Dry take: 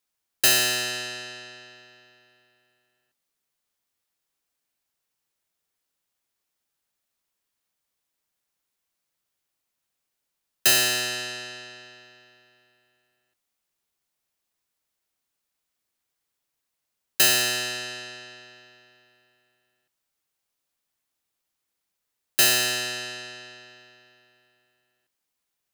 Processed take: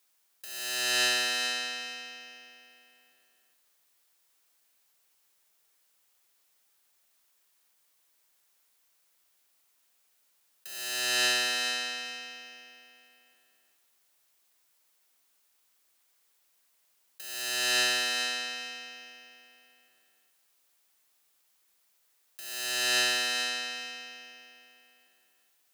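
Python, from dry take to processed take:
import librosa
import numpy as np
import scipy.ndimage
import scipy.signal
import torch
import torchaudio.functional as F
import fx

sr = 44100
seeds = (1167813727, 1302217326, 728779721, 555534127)

p1 = fx.highpass(x, sr, hz=480.0, slope=6)
p2 = fx.high_shelf(p1, sr, hz=9200.0, db=3.5)
p3 = fx.over_compress(p2, sr, threshold_db=-33.0, ratio=-1.0)
p4 = p3 + fx.echo_feedback(p3, sr, ms=425, feedback_pct=18, wet_db=-7, dry=0)
y = p4 * 10.0 ** (1.0 / 20.0)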